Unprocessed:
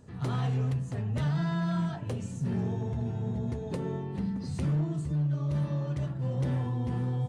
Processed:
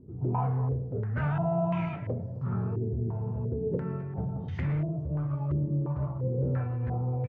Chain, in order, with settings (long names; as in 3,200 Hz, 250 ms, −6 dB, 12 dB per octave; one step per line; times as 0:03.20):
repeating echo 263 ms, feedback 56%, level −18.5 dB
formants moved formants −5 semitones
low-pass on a step sequencer 2.9 Hz 360–2,100 Hz